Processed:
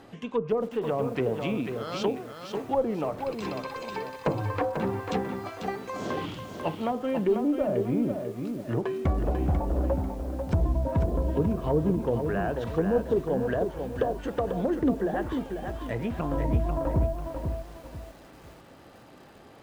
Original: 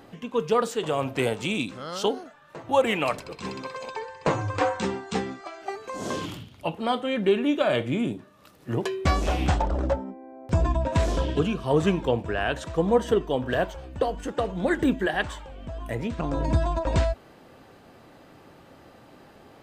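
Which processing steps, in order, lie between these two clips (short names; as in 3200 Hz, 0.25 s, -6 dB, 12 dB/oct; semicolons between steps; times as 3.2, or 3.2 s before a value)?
added harmonics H 3 -45 dB, 4 -19 dB, 5 -26 dB, 6 -22 dB, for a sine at -9.5 dBFS; treble ducked by the level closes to 570 Hz, closed at -19 dBFS; lo-fi delay 0.493 s, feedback 35%, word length 8-bit, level -6 dB; gain -2.5 dB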